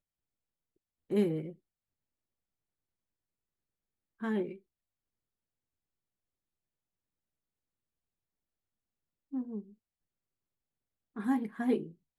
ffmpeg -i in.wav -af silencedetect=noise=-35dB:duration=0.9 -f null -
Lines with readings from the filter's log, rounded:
silence_start: 0.00
silence_end: 1.11 | silence_duration: 1.11
silence_start: 1.49
silence_end: 4.23 | silence_duration: 2.74
silence_start: 4.52
silence_end: 9.34 | silence_duration: 4.82
silence_start: 9.60
silence_end: 11.17 | silence_duration: 1.57